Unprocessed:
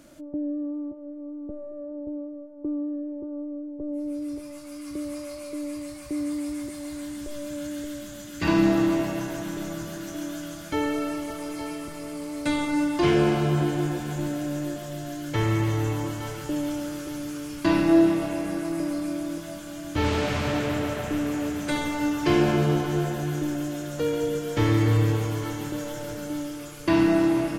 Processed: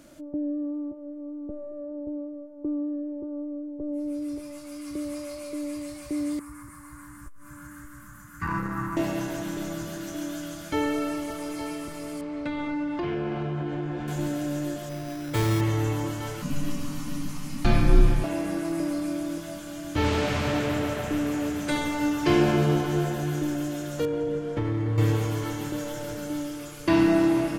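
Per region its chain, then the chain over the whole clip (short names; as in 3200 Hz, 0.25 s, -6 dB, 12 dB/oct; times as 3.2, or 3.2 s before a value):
6.39–8.97 EQ curve 150 Hz 0 dB, 570 Hz -26 dB, 1100 Hz +7 dB, 1700 Hz 0 dB, 3400 Hz -24 dB, 9800 Hz -4 dB + core saturation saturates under 210 Hz
12.21–14.08 LPF 2700 Hz + compressor 4:1, threshold -27 dBFS
14.89–15.61 high shelf 9000 Hz -9.5 dB + careless resampling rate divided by 8×, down none, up hold
16.42–18.24 low shelf 180 Hz +12 dB + frequency shift -300 Hz
24.05–24.98 CVSD 64 kbps + LPF 1100 Hz 6 dB/oct + compressor 5:1, threshold -23 dBFS
whole clip: dry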